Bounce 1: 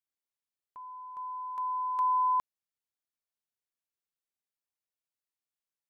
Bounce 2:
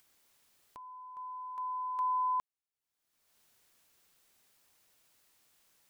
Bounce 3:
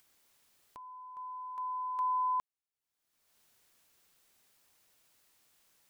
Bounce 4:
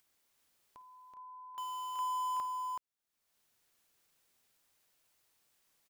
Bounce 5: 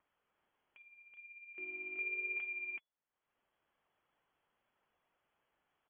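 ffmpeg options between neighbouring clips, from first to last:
-af "acompressor=mode=upward:threshold=0.00708:ratio=2.5,volume=0.596"
-af anull
-filter_complex "[0:a]asplit=2[s0][s1];[s1]acrusher=bits=5:mix=0:aa=0.000001,volume=0.501[s2];[s0][s2]amix=inputs=2:normalize=0,aecho=1:1:51|57|377:0.106|0.106|0.631,volume=0.473"
-filter_complex "[0:a]acrossover=split=890|2300[s0][s1][s2];[s2]aeval=exprs='0.0106*sin(PI/2*2.51*val(0)/0.0106)':c=same[s3];[s0][s1][s3]amix=inputs=3:normalize=0,flanger=delay=0.8:depth=8.3:regen=47:speed=1:shape=triangular,lowpass=f=2900:t=q:w=0.5098,lowpass=f=2900:t=q:w=0.6013,lowpass=f=2900:t=q:w=0.9,lowpass=f=2900:t=q:w=2.563,afreqshift=-3400,volume=0.891"

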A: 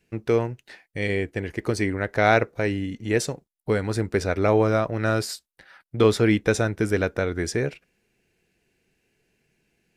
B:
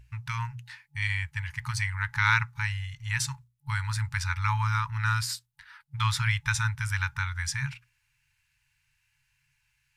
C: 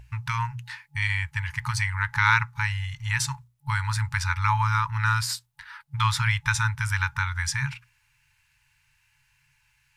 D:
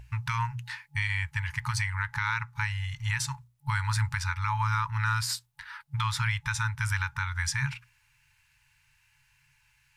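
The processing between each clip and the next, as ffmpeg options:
-af "aeval=exprs='val(0)+0.00447*(sin(2*PI*60*n/s)+sin(2*PI*2*60*n/s)/2+sin(2*PI*3*60*n/s)/3+sin(2*PI*4*60*n/s)/4+sin(2*PI*5*60*n/s)/5)':c=same,afftfilt=real='re*(1-between(b*sr/4096,140,850))':imag='im*(1-between(b*sr/4096,140,850))':win_size=4096:overlap=0.75,bandreject=f=60:t=h:w=6,bandreject=f=120:t=h:w=6,bandreject=f=180:t=h:w=6,bandreject=f=240:t=h:w=6,bandreject=f=300:t=h:w=6,bandreject=f=360:t=h:w=6,bandreject=f=420:t=h:w=6,bandreject=f=480:t=h:w=6"
-filter_complex "[0:a]equalizer=f=760:w=1.1:g=6.5,asplit=2[s0][s1];[s1]acompressor=threshold=0.02:ratio=6,volume=0.944[s2];[s0][s2]amix=inputs=2:normalize=0"
-af "alimiter=limit=0.126:level=0:latency=1:release=350"

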